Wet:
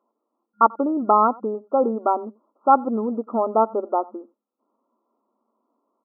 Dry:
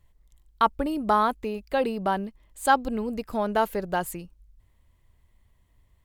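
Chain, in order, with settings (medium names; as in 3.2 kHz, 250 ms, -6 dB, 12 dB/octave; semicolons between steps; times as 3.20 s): speakerphone echo 90 ms, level -22 dB; FFT band-pass 210–1400 Hz; trim +5.5 dB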